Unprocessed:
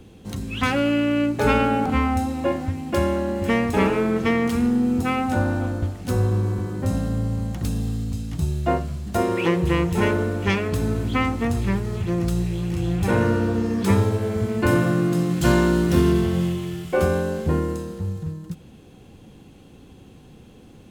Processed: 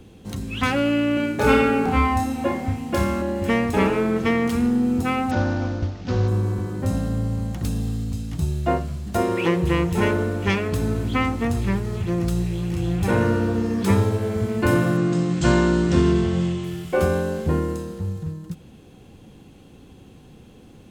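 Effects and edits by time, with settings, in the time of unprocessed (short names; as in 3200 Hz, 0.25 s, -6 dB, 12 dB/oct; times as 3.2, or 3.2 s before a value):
1.14–3.22 flutter echo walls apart 5.1 m, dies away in 0.45 s
5.31–6.28 CVSD 32 kbps
14.97–16.64 steep low-pass 8500 Hz 72 dB/oct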